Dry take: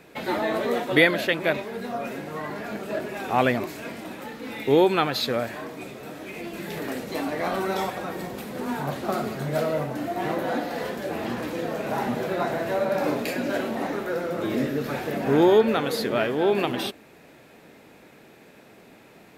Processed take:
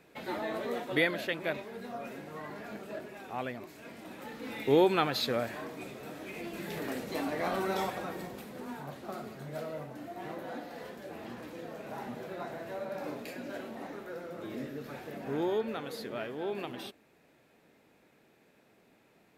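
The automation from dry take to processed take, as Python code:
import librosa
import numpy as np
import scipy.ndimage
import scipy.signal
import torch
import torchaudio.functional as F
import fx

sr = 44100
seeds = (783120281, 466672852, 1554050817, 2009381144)

y = fx.gain(x, sr, db=fx.line((2.76, -10.0), (3.54, -17.0), (4.39, -5.5), (7.98, -5.5), (8.87, -14.0)))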